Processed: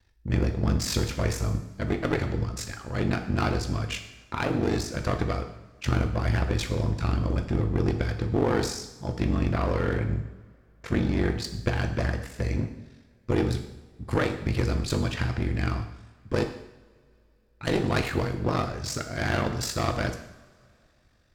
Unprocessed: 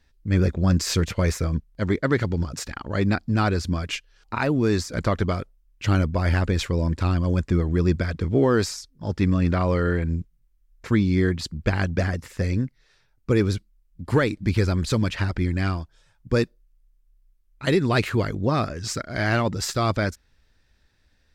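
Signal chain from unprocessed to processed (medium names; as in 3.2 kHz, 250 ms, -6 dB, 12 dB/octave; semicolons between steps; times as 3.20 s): ring modulator 24 Hz; one-sided clip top -28.5 dBFS; two-slope reverb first 0.8 s, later 3.1 s, from -22 dB, DRR 5 dB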